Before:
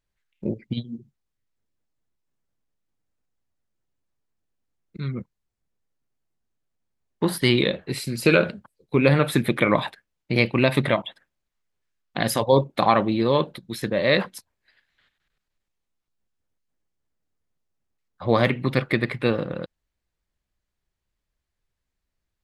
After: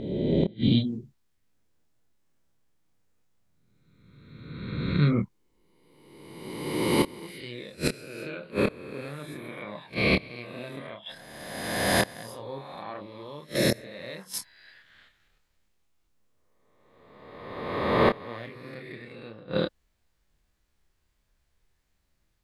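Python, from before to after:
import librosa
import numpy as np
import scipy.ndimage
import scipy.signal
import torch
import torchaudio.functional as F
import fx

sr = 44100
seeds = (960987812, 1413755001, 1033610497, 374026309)

y = fx.spec_swells(x, sr, rise_s=1.63)
y = fx.gate_flip(y, sr, shuts_db=-14.0, range_db=-28)
y = fx.chorus_voices(y, sr, voices=2, hz=0.54, base_ms=27, depth_ms=2.6, mix_pct=35)
y = y * librosa.db_to_amplitude(7.5)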